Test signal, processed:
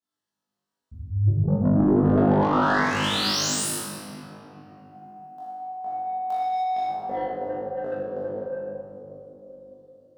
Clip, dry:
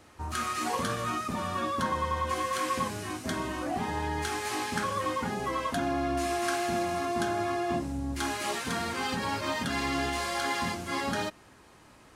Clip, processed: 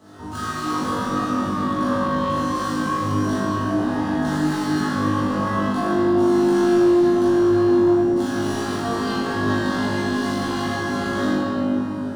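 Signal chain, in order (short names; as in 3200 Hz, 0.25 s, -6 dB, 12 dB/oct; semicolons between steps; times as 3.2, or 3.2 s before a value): median filter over 3 samples; in parallel at +2.5 dB: compressor, threshold -41 dBFS; on the sum: HPF 170 Hz 12 dB/oct; tone controls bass +10 dB, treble -3 dB; shoebox room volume 200 m³, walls hard, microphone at 1.5 m; soft clip -13.5 dBFS; bell 2300 Hz -14.5 dB 0.4 oct; on a send: flutter echo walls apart 3.4 m, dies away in 0.69 s; on the sum: gain -7 dB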